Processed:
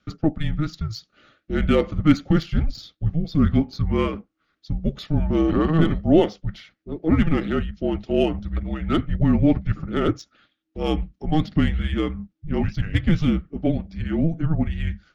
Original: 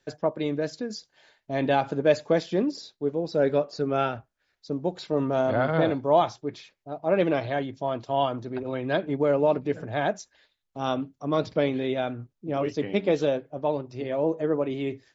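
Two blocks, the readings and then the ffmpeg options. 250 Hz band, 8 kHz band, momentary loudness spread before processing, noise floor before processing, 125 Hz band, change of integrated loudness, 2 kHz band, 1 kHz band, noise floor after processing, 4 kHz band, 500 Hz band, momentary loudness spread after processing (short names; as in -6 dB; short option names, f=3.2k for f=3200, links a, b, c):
+8.0 dB, n/a, 10 LU, -77 dBFS, +11.5 dB, +4.0 dB, +0.5 dB, -4.0 dB, -75 dBFS, +3.0 dB, -2.5 dB, 10 LU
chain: -af "bandreject=f=1.3k:w=5.5,afreqshift=-320,adynamicsmooth=sensitivity=6:basefreq=4.6k,volume=5dB"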